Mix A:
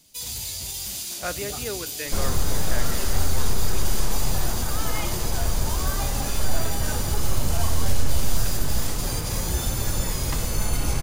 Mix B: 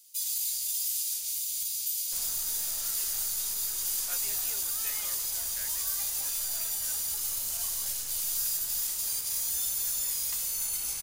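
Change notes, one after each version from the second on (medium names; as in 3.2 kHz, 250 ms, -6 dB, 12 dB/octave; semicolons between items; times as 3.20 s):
speech: entry +2.85 s; second sound: send off; master: add pre-emphasis filter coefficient 0.97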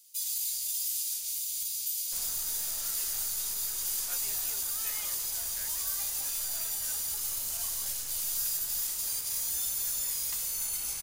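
reverb: off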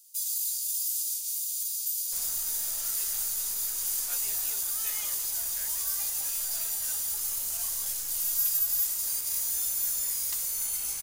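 first sound -7.5 dB; master: add tone controls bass -2 dB, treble +10 dB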